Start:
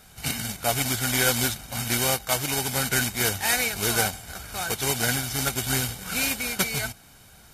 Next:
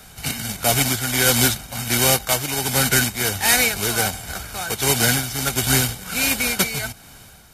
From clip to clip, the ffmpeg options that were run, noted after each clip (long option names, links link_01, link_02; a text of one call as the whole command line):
ffmpeg -i in.wav -filter_complex "[0:a]tremolo=f=1.4:d=0.51,acrossover=split=240|460|2200[link_01][link_02][link_03][link_04];[link_03]asoftclip=type=hard:threshold=-28dB[link_05];[link_01][link_02][link_05][link_04]amix=inputs=4:normalize=0,volume=8dB" out.wav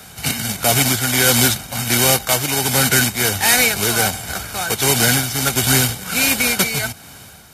ffmpeg -i in.wav -filter_complex "[0:a]highpass=74,asplit=2[link_01][link_02];[link_02]alimiter=limit=-11.5dB:level=0:latency=1,volume=1dB[link_03];[link_01][link_03]amix=inputs=2:normalize=0,volume=-1.5dB" out.wav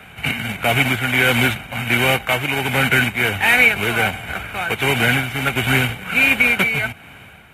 ffmpeg -i in.wav -af "highshelf=frequency=3600:width_type=q:width=3:gain=-12.5,volume=-1dB" out.wav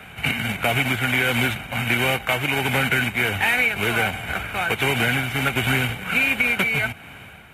ffmpeg -i in.wav -af "acompressor=threshold=-17dB:ratio=5" out.wav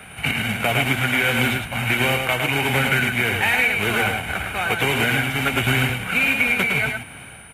ffmpeg -i in.wav -filter_complex "[0:a]aeval=exprs='val(0)+0.00355*sin(2*PI*9400*n/s)':channel_layout=same,asplit=2[link_01][link_02];[link_02]aecho=0:1:108:0.596[link_03];[link_01][link_03]amix=inputs=2:normalize=0" out.wav